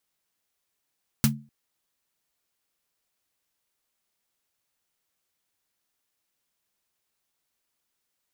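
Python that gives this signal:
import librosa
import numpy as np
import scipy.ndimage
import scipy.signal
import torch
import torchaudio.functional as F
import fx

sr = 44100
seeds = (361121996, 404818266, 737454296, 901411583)

y = fx.drum_snare(sr, seeds[0], length_s=0.25, hz=140.0, second_hz=220.0, noise_db=-2, noise_from_hz=610.0, decay_s=0.34, noise_decay_s=0.11)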